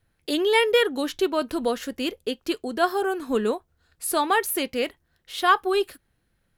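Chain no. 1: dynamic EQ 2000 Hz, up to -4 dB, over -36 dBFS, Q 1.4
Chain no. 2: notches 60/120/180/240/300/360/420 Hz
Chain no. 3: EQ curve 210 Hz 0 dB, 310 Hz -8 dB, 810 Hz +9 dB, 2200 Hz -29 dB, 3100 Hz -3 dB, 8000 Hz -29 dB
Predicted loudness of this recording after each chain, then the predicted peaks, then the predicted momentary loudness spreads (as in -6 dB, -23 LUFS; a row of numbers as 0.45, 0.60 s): -25.0, -24.5, -24.5 LUFS; -8.5, -7.0, -6.5 dBFS; 10, 10, 13 LU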